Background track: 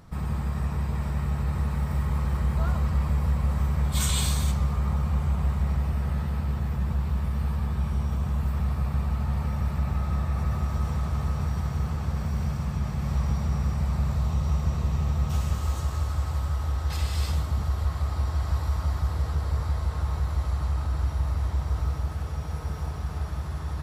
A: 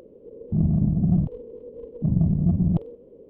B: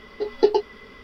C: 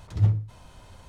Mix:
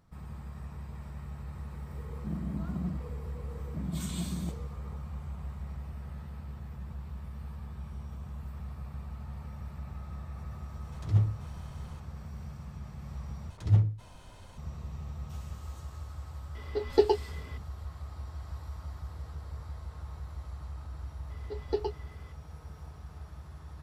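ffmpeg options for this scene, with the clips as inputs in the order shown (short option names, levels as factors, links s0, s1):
-filter_complex "[3:a]asplit=2[s0][s1];[2:a]asplit=2[s2][s3];[0:a]volume=0.188[s4];[1:a]highpass=f=180:w=0.5412,highpass=f=180:w=1.3066[s5];[s4]asplit=2[s6][s7];[s6]atrim=end=13.504[s8];[s1]atrim=end=1.08,asetpts=PTS-STARTPTS,volume=0.794[s9];[s7]atrim=start=14.576[s10];[s5]atrim=end=3.29,asetpts=PTS-STARTPTS,volume=0.282,afade=t=in:d=0.004:c=hsin,afade=t=out:st=3.286:d=0.004:c=hsin,adelay=1720[s11];[s0]atrim=end=1.08,asetpts=PTS-STARTPTS,volume=0.631,afade=t=in:d=0.004:c=hsin,afade=t=out:st=1.076:d=0.004:c=hsin,adelay=10920[s12];[s2]atrim=end=1.03,asetpts=PTS-STARTPTS,volume=0.562,afade=t=in:d=0.004:c=hsin,afade=t=out:st=1.026:d=0.004:c=hsin,adelay=16550[s13];[s3]atrim=end=1.03,asetpts=PTS-STARTPTS,volume=0.211,afade=t=in:d=0.004:c=hsin,afade=t=out:st=1.026:d=0.004:c=hsin,adelay=21300[s14];[s8][s9]acrossfade=d=0.004:c1=hsin:c2=hsin[s15];[s15][s10]acrossfade=d=0.004:c1=hsin:c2=hsin[s16];[s16][s11][s12][s13][s14]amix=inputs=5:normalize=0"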